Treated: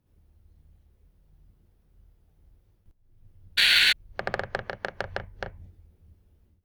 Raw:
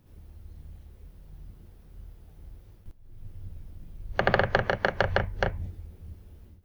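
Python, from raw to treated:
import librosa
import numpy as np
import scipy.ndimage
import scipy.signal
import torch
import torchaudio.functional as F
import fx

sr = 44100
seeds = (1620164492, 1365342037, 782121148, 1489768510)

y = fx.spec_paint(x, sr, seeds[0], shape='noise', start_s=3.57, length_s=0.36, low_hz=1400.0, high_hz=4600.0, level_db=-13.0)
y = fx.cheby_harmonics(y, sr, harmonics=(7,), levels_db=(-23,), full_scale_db=-2.0)
y = y * 10.0 ** (-6.0 / 20.0)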